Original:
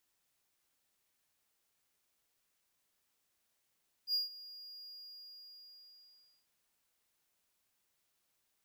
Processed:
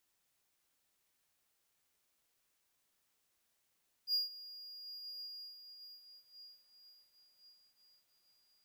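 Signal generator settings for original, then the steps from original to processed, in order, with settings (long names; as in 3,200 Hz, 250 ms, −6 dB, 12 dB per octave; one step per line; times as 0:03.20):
note with an ADSR envelope triangle 4,840 Hz, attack 70 ms, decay 147 ms, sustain −19 dB, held 0.81 s, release 1,590 ms −27 dBFS
feedback delay with all-pass diffusion 1,016 ms, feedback 43%, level −11 dB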